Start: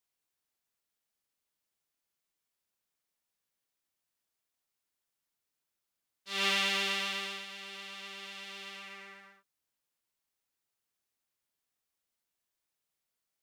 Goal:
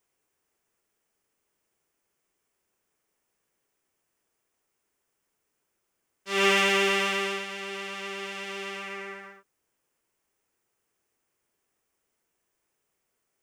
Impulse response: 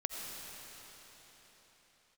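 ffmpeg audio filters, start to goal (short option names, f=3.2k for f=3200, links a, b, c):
-filter_complex "[0:a]equalizer=f=400:t=o:w=0.67:g=7,equalizer=f=4k:t=o:w=0.67:g=-11,equalizer=f=16k:t=o:w=0.67:g=-11,asplit=2[a][b];[b]asoftclip=type=hard:threshold=-31.5dB,volume=-7dB[c];[a][c]amix=inputs=2:normalize=0,volume=8dB"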